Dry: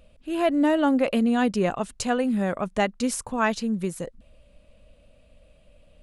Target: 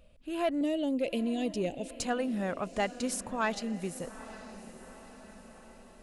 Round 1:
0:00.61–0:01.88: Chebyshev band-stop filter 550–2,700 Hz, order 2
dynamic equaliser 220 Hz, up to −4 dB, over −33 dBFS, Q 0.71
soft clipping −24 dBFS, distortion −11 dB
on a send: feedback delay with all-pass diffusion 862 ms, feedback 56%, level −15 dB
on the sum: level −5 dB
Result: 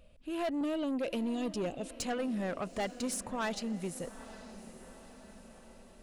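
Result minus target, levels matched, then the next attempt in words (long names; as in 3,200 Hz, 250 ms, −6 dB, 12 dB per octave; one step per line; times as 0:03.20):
soft clipping: distortion +12 dB
0:00.61–0:01.88: Chebyshev band-stop filter 550–2,700 Hz, order 2
dynamic equaliser 220 Hz, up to −4 dB, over −33 dBFS, Q 0.71
soft clipping −13.5 dBFS, distortion −23 dB
on a send: feedback delay with all-pass diffusion 862 ms, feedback 56%, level −15 dB
on the sum: level −5 dB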